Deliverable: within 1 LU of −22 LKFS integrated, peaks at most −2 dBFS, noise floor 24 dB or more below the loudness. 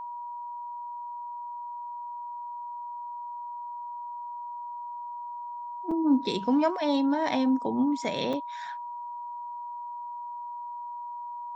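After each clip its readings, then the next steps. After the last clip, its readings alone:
number of dropouts 2; longest dropout 4.9 ms; interfering tone 960 Hz; level of the tone −35 dBFS; integrated loudness −32.0 LKFS; sample peak −13.5 dBFS; target loudness −22.0 LKFS
→ repair the gap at 0:05.91/0:08.33, 4.9 ms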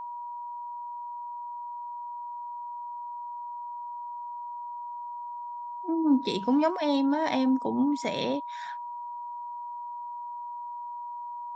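number of dropouts 0; interfering tone 960 Hz; level of the tone −35 dBFS
→ notch filter 960 Hz, Q 30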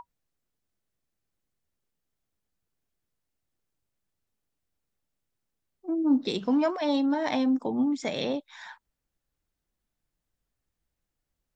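interfering tone none found; integrated loudness −27.0 LKFS; sample peak −14.0 dBFS; target loudness −22.0 LKFS
→ level +5 dB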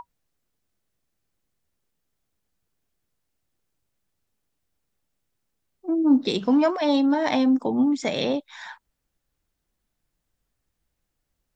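integrated loudness −22.0 LKFS; sample peak −9.0 dBFS; background noise floor −79 dBFS

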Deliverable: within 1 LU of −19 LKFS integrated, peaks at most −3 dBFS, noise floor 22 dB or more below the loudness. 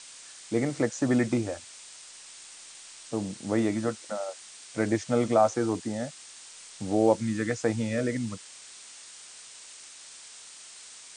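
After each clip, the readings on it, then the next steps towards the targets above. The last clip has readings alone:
background noise floor −48 dBFS; target noise floor −51 dBFS; integrated loudness −28.5 LKFS; sample peak −9.5 dBFS; target loudness −19.0 LKFS
→ broadband denoise 6 dB, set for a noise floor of −48 dBFS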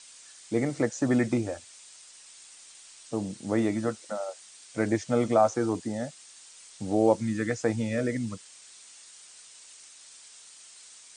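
background noise floor −51 dBFS; integrated loudness −28.5 LKFS; sample peak −9.5 dBFS; target loudness −19.0 LKFS
→ level +9.5 dB
brickwall limiter −3 dBFS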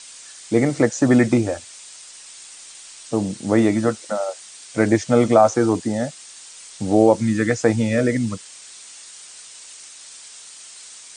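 integrated loudness −19.5 LKFS; sample peak −3.0 dBFS; background noise floor −42 dBFS

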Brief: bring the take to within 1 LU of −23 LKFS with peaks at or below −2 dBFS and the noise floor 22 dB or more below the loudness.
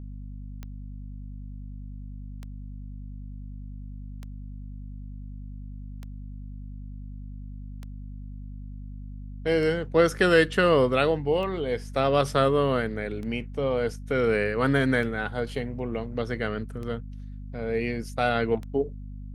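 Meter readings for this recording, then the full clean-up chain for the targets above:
number of clicks 11; mains hum 50 Hz; hum harmonics up to 250 Hz; level of the hum −36 dBFS; integrated loudness −25.5 LKFS; sample peak −7.0 dBFS; target loudness −23.0 LKFS
→ click removal
hum removal 50 Hz, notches 5
level +2.5 dB

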